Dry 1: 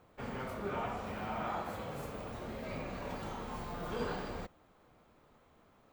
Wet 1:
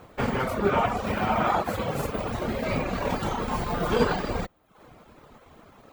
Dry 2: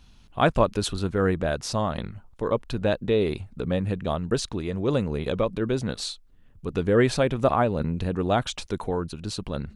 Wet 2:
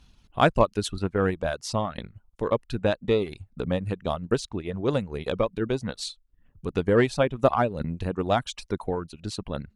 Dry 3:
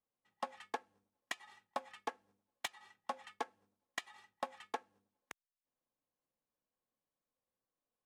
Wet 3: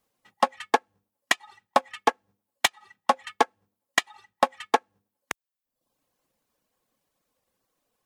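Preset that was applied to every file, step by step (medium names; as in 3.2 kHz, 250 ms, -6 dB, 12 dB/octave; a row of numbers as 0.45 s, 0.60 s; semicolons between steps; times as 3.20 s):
Chebyshev shaper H 7 -32 dB, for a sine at -7 dBFS; reverb removal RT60 0.66 s; transient shaper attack +2 dB, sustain -4 dB; normalise loudness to -27 LUFS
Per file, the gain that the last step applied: +17.0 dB, 0.0 dB, +19.0 dB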